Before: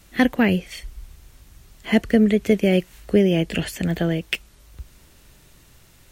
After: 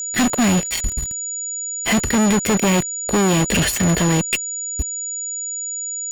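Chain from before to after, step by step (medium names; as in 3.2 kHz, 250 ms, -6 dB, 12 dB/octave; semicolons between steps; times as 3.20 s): fuzz box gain 33 dB, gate -36 dBFS; whistle 6.9 kHz -23 dBFS; trim -1 dB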